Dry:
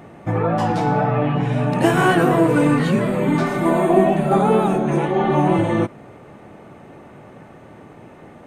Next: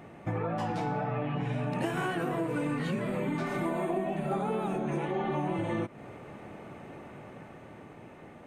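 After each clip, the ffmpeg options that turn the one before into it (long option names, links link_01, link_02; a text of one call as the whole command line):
ffmpeg -i in.wav -af "dynaudnorm=framelen=360:gausssize=9:maxgain=11.5dB,equalizer=frequency=2400:width_type=o:width=0.77:gain=3.5,acompressor=threshold=-21dB:ratio=6,volume=-7.5dB" out.wav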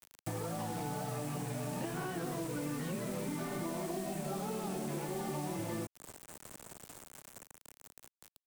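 ffmpeg -i in.wav -filter_complex "[0:a]aeval=exprs='val(0)+0.00708*sin(2*PI*8100*n/s)':channel_layout=same,acrusher=bits=5:mix=0:aa=0.000001,acrossover=split=260|1100[link_01][link_02][link_03];[link_01]acompressor=threshold=-37dB:ratio=4[link_04];[link_02]acompressor=threshold=-37dB:ratio=4[link_05];[link_03]acompressor=threshold=-43dB:ratio=4[link_06];[link_04][link_05][link_06]amix=inputs=3:normalize=0,volume=-3dB" out.wav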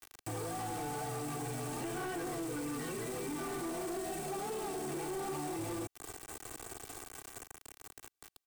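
ffmpeg -i in.wav -filter_complex "[0:a]aecho=1:1:2.6:0.8,asplit=2[link_01][link_02];[link_02]alimiter=level_in=10.5dB:limit=-24dB:level=0:latency=1,volume=-10.5dB,volume=2dB[link_03];[link_01][link_03]amix=inputs=2:normalize=0,asoftclip=type=tanh:threshold=-32dB,volume=-2.5dB" out.wav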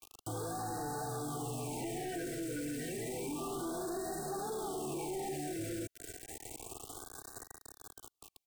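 ffmpeg -i in.wav -af "afftfilt=real='re*(1-between(b*sr/1024,950*pow(2700/950,0.5+0.5*sin(2*PI*0.3*pts/sr))/1.41,950*pow(2700/950,0.5+0.5*sin(2*PI*0.3*pts/sr))*1.41))':imag='im*(1-between(b*sr/1024,950*pow(2700/950,0.5+0.5*sin(2*PI*0.3*pts/sr))/1.41,950*pow(2700/950,0.5+0.5*sin(2*PI*0.3*pts/sr))*1.41))':win_size=1024:overlap=0.75" out.wav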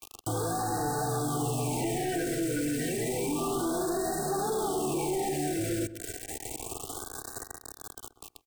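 ffmpeg -i in.wav -filter_complex "[0:a]asplit=2[link_01][link_02];[link_02]adelay=129,lowpass=frequency=1200:poles=1,volume=-12dB,asplit=2[link_03][link_04];[link_04]adelay=129,lowpass=frequency=1200:poles=1,volume=0.24,asplit=2[link_05][link_06];[link_06]adelay=129,lowpass=frequency=1200:poles=1,volume=0.24[link_07];[link_01][link_03][link_05][link_07]amix=inputs=4:normalize=0,volume=8.5dB" out.wav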